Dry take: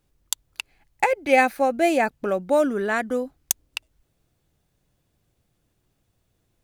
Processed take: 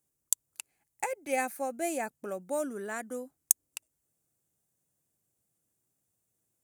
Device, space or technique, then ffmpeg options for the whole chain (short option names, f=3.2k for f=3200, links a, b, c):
budget condenser microphone: -af "highpass=120,highshelf=f=5.7k:t=q:w=1.5:g=12,volume=-13dB"